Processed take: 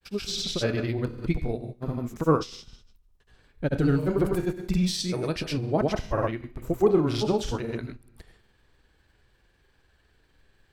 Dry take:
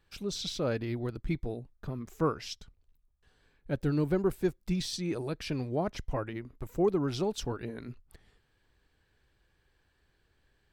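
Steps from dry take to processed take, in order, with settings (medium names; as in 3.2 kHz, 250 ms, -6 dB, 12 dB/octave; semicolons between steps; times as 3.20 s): vibrato 13 Hz 28 cents; Schroeder reverb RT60 0.53 s, combs from 25 ms, DRR 8.5 dB; granulator, pitch spread up and down by 0 st; trim +7.5 dB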